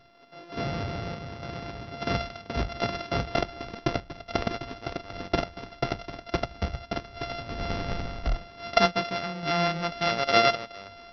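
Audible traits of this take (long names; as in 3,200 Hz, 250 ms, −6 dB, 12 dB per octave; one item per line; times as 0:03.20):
a buzz of ramps at a fixed pitch in blocks of 64 samples
sample-and-hold tremolo
MP2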